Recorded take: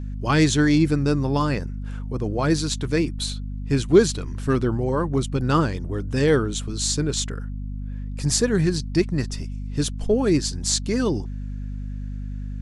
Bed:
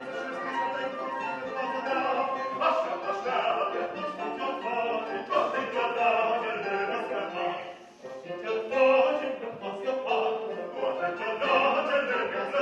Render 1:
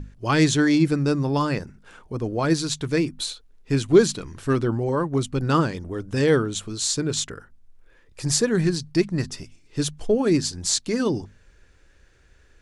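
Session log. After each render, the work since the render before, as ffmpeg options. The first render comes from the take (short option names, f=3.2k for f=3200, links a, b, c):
-af "bandreject=f=50:t=h:w=6,bandreject=f=100:t=h:w=6,bandreject=f=150:t=h:w=6,bandreject=f=200:t=h:w=6,bandreject=f=250:t=h:w=6"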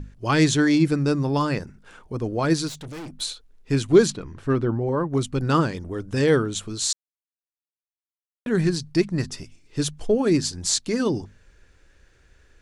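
-filter_complex "[0:a]asettb=1/sr,asplit=3[a][b][c];[a]atrim=end=2.684[d];[b]atrim=start=2.68:end=3.21,asetpts=PTS-STARTPTS,afade=t=in:d=0.004:c=qsin,afade=t=out:st=0.526:d=0.004:c=qsin,aeval=exprs='(tanh(50.1*val(0)+0.25)-tanh(0.25))/50.1':c=same[e];[c]atrim=start=3.206[f];[d][e]acrossfade=d=0.004:c1=hsin:c2=qsin[g];[g][f]acrossfade=d=0.004:c1=qsin:c2=hsin,asettb=1/sr,asplit=3[h][i][j];[h]atrim=end=4.104[k];[i]atrim=start=4.1:end=5.1,asetpts=PTS-STARTPTS,afade=t=in:d=0.004:c=qsin,afade=t=out:st=0.996:d=0.004:c=qsin,lowpass=f=1.7k:p=1[l];[j]atrim=start=5.096[m];[k][l]acrossfade=d=0.004:c1=hsin:c2=qsin[n];[n][m]acrossfade=d=0.004:c1=qsin:c2=hsin,asplit=3[o][p][q];[o]atrim=end=6.93,asetpts=PTS-STARTPTS,afade=t=out:st=6.926:d=0.004:c=hsin[r];[p]atrim=start=6.93:end=8.46,asetpts=PTS-STARTPTS,volume=0[s];[q]atrim=start=8.46,asetpts=PTS-STARTPTS,afade=t=in:d=0.004:c=hsin[t];[r][s][t]concat=n=3:v=0:a=1"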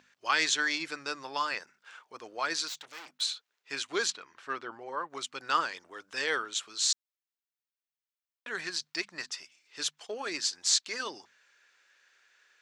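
-af "highpass=1.2k,equalizer=f=10k:t=o:w=0.5:g=-14"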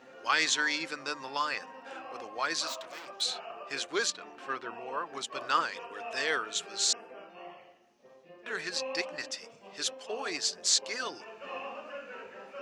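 -filter_complex "[1:a]volume=-16.5dB[a];[0:a][a]amix=inputs=2:normalize=0"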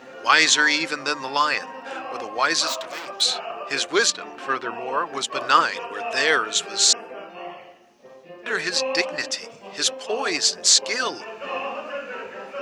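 -af "volume=11dB,alimiter=limit=-1dB:level=0:latency=1"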